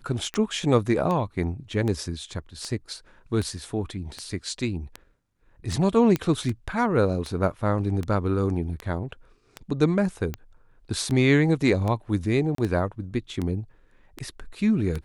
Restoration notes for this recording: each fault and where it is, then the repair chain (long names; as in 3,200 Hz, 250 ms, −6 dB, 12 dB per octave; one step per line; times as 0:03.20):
scratch tick 78 rpm −17 dBFS
0:06.16: click −12 dBFS
0:12.55–0:12.58: drop-out 33 ms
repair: click removal
repair the gap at 0:12.55, 33 ms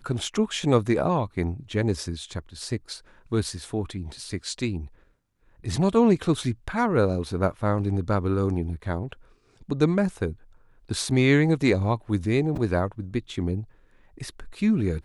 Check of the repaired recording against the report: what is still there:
none of them is left